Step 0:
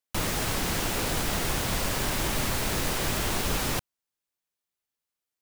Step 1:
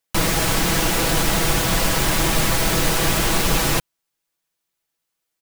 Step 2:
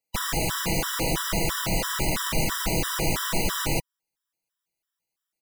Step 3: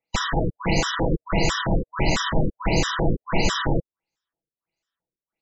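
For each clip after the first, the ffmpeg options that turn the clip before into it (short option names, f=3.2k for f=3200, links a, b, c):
-af "aecho=1:1:6.1:0.49,volume=8dB"
-af "afftfilt=real='re*gt(sin(2*PI*3*pts/sr)*(1-2*mod(floor(b*sr/1024/990),2)),0)':imag='im*gt(sin(2*PI*3*pts/sr)*(1-2*mod(floor(b*sr/1024/990),2)),0)':win_size=1024:overlap=0.75,volume=-4dB"
-af "afftfilt=real='re*lt(b*sr/1024,510*pow(7900/510,0.5+0.5*sin(2*PI*1.5*pts/sr)))':imag='im*lt(b*sr/1024,510*pow(7900/510,0.5+0.5*sin(2*PI*1.5*pts/sr)))':win_size=1024:overlap=0.75,volume=5.5dB"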